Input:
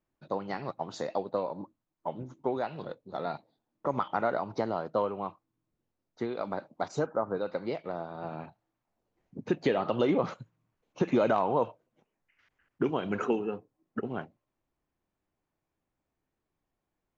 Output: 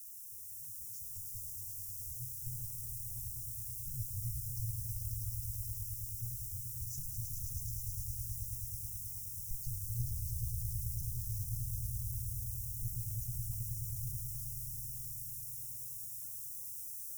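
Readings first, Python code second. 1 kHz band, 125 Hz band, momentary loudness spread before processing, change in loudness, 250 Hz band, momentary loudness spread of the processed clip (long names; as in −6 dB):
below −40 dB, +3.5 dB, 14 LU, −7.0 dB, below −20 dB, 3 LU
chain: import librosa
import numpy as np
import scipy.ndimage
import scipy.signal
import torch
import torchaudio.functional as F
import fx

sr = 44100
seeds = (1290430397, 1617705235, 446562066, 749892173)

p1 = fx.fade_in_head(x, sr, length_s=2.66)
p2 = fx.quant_dither(p1, sr, seeds[0], bits=8, dither='triangular')
p3 = p1 + F.gain(torch.from_numpy(p2), -3.0).numpy()
p4 = fx.high_shelf(p3, sr, hz=5500.0, db=8.5)
p5 = p4 + fx.echo_swell(p4, sr, ms=107, loudest=5, wet_db=-6, dry=0)
p6 = fx.tube_stage(p5, sr, drive_db=19.0, bias=0.75)
p7 = scipy.signal.sosfilt(scipy.signal.cheby1(5, 1.0, [120.0, 5400.0], 'bandstop', fs=sr, output='sos'), p6)
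p8 = fx.peak_eq(p7, sr, hz=4300.0, db=-8.0, octaves=1.6)
y = F.gain(torch.from_numpy(p8), 1.5).numpy()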